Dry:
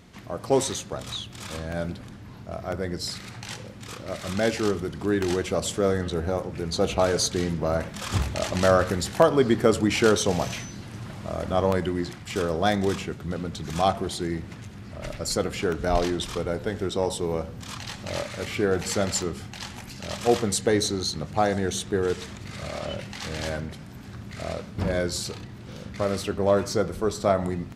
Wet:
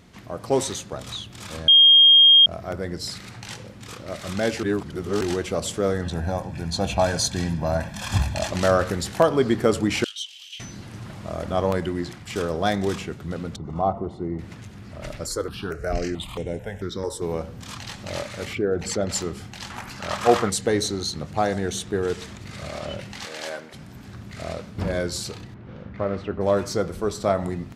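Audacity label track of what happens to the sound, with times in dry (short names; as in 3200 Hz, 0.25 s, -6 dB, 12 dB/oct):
1.680000	2.460000	bleep 3230 Hz -9 dBFS
4.630000	5.210000	reverse
6.040000	8.480000	comb 1.2 ms
10.040000	10.600000	ladder high-pass 2900 Hz, resonance 80%
13.560000	14.390000	polynomial smoothing over 65 samples
15.260000	17.220000	step phaser 4.5 Hz 710–4600 Hz
18.530000	19.100000	formant sharpening exponent 1.5
19.700000	20.500000	bell 1200 Hz +12 dB 1.6 oct
23.250000	23.740000	HPF 420 Hz
25.540000	26.410000	LPF 1900 Hz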